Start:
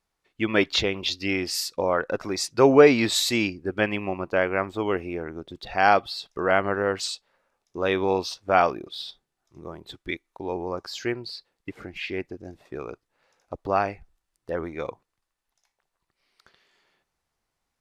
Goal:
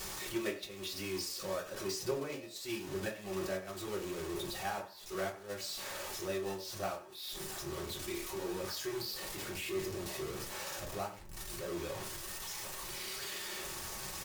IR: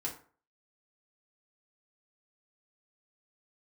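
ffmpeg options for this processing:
-filter_complex "[0:a]aeval=exprs='val(0)+0.5*0.141*sgn(val(0))':c=same,agate=range=0.0316:threshold=0.2:ratio=16:detection=peak,acrossover=split=3500[s0][s1];[s1]acontrast=81[s2];[s0][s2]amix=inputs=2:normalize=0,alimiter=limit=0.447:level=0:latency=1:release=338,acompressor=threshold=0.00501:ratio=16,asetrate=36028,aresample=44100,atempo=1.22405,asplit=4[s3][s4][s5][s6];[s4]adelay=121,afreqshift=69,volume=0.126[s7];[s5]adelay=242,afreqshift=138,volume=0.0427[s8];[s6]adelay=363,afreqshift=207,volume=0.0146[s9];[s3][s7][s8][s9]amix=inputs=4:normalize=0[s10];[1:a]atrim=start_sample=2205[s11];[s10][s11]afir=irnorm=-1:irlink=0,asetrate=55125,aresample=44100,volume=2.66"

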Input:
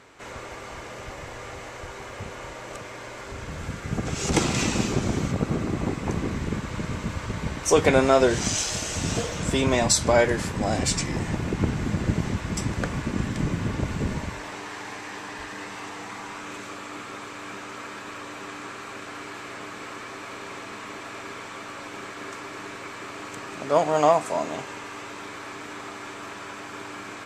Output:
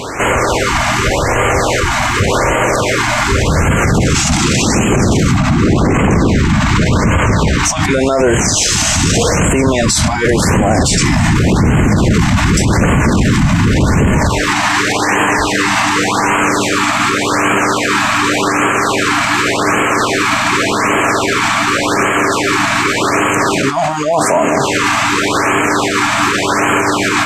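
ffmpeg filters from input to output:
-filter_complex "[0:a]asettb=1/sr,asplit=3[s0][s1][s2];[s0]atrim=end=5.374[s3];[s1]atrim=start=5.37:end=7.84,asetpts=PTS-STARTPTS,afade=t=in:d=0.004:c=qsin,afade=t=out:st=2.466:d=0.004:c=qsin,equalizer=f=11000:t=o:w=0.47:g=-12[s4];[s2]atrim=start=7.836[s5];[s3][s4]acrossfade=d=0.004:c1=hsin:c2=qsin[s6];[s6][s5]acrossfade=d=0.004:c1=qsin:c2=hsin,alimiter=level_in=44.7:limit=0.891:release=50:level=0:latency=1,afftfilt=real='re*(1-between(b*sr/1024,410*pow(4700/410,0.5+0.5*sin(2*PI*0.87*pts/sr))/1.41,410*pow(4700/410,0.5+0.5*sin(2*PI*0.87*pts/sr))*1.41))':imag='im*(1-between(b*sr/1024,410*pow(4700/410,0.5+0.5*sin(2*PI*0.87*pts/sr))/1.41,410*pow(4700/410,0.5+0.5*sin(2*PI*0.87*pts/sr))*1.41))':win_size=1024:overlap=0.75,volume=0.75"

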